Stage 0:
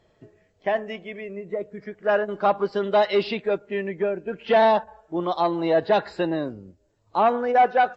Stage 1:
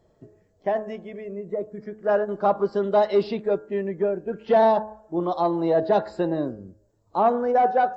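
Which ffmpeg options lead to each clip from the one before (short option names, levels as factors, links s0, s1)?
-af "equalizer=f=2600:t=o:w=1.7:g=-13.5,bandreject=f=107.4:t=h:w=4,bandreject=f=214.8:t=h:w=4,bandreject=f=322.2:t=h:w=4,bandreject=f=429.6:t=h:w=4,bandreject=f=537:t=h:w=4,bandreject=f=644.4:t=h:w=4,bandreject=f=751.8:t=h:w=4,bandreject=f=859.2:t=h:w=4,bandreject=f=966.6:t=h:w=4,bandreject=f=1074:t=h:w=4,bandreject=f=1181.4:t=h:w=4,bandreject=f=1288.8:t=h:w=4,bandreject=f=1396.2:t=h:w=4,bandreject=f=1503.6:t=h:w=4,bandreject=f=1611:t=h:w=4,bandreject=f=1718.4:t=h:w=4,volume=1.26"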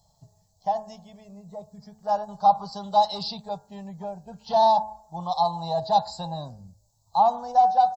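-af "firequalizer=gain_entry='entry(160,0);entry(330,-29);entry(810,7);entry(1400,-15);entry(2100,-18);entry(4100,13)':delay=0.05:min_phase=1"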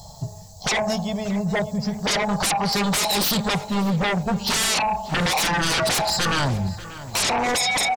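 -filter_complex "[0:a]acompressor=threshold=0.0282:ratio=2,aeval=exprs='0.119*sin(PI/2*8.91*val(0)/0.119)':c=same,asplit=2[s0][s1];[s1]adelay=589,lowpass=f=3500:p=1,volume=0.178,asplit=2[s2][s3];[s3]adelay=589,lowpass=f=3500:p=1,volume=0.36,asplit=2[s4][s5];[s5]adelay=589,lowpass=f=3500:p=1,volume=0.36[s6];[s0][s2][s4][s6]amix=inputs=4:normalize=0"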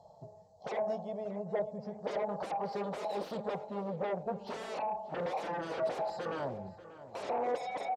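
-af "bandpass=f=520:t=q:w=2.2:csg=0,volume=0.562"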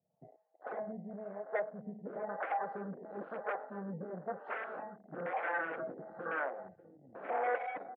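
-filter_complex "[0:a]acrossover=split=410[s0][s1];[s0]aeval=exprs='val(0)*(1-1/2+1/2*cos(2*PI*1*n/s))':c=same[s2];[s1]aeval=exprs='val(0)*(1-1/2-1/2*cos(2*PI*1*n/s))':c=same[s3];[s2][s3]amix=inputs=2:normalize=0,afwtdn=0.00355,highpass=230,equalizer=f=410:t=q:w=4:g=-6,equalizer=f=590:t=q:w=4:g=-5,equalizer=f=930:t=q:w=4:g=-8,equalizer=f=1500:t=q:w=4:g=8,equalizer=f=2100:t=q:w=4:g=3,lowpass=f=2400:w=0.5412,lowpass=f=2400:w=1.3066,volume=2"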